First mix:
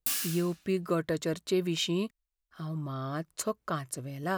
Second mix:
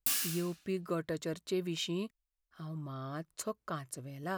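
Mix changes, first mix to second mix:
speech −6.0 dB
reverb: off

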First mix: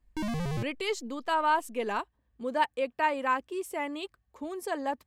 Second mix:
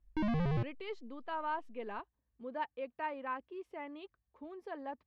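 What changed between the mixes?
speech −10.0 dB
master: add high-frequency loss of the air 300 metres

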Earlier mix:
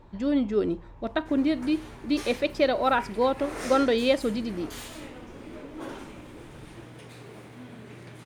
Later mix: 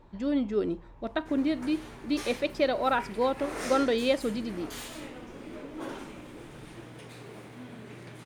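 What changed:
speech −3.0 dB
master: add parametric band 85 Hz −4 dB 0.81 octaves

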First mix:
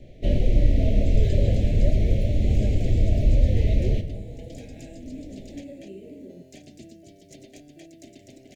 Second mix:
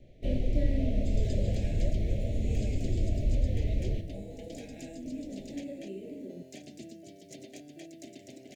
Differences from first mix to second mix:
first sound −9.0 dB
second sound: add high-pass filter 140 Hz

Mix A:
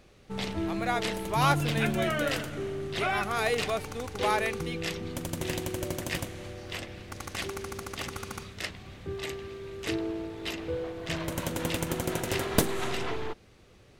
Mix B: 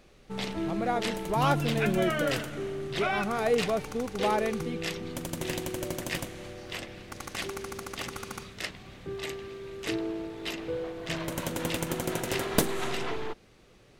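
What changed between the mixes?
speech: add tilt shelving filter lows +10 dB, about 850 Hz
background: add parametric band 82 Hz −11.5 dB 0.5 octaves

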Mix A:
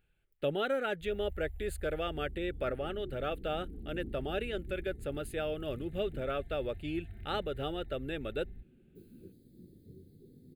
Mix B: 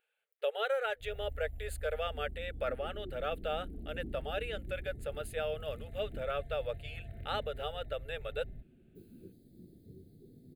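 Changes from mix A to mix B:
speech: add linear-phase brick-wall high-pass 420 Hz
first sound: remove Chebyshev band-stop filter 110–790 Hz, order 4

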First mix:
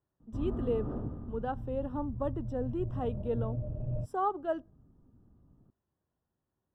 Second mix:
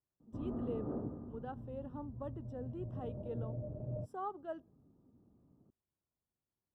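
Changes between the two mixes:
speech −10.5 dB
background: add resonant band-pass 420 Hz, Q 0.59

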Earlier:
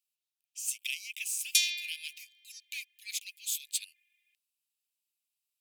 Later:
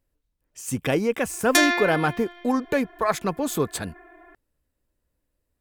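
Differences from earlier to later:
background: send +10.0 dB
master: remove Butterworth high-pass 2,400 Hz 72 dB per octave

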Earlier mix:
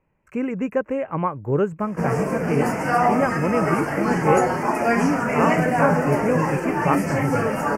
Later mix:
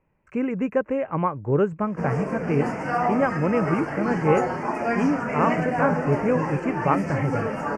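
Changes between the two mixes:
background −4.5 dB
master: add high-frequency loss of the air 80 metres

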